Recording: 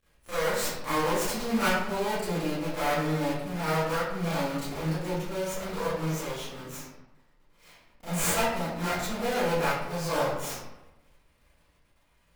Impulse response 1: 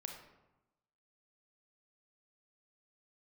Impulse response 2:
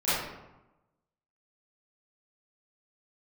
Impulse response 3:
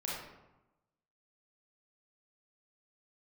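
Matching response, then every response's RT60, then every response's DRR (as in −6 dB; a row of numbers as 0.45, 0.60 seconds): 2; 1.0, 1.0, 1.0 seconds; 2.5, −15.5, −6.0 decibels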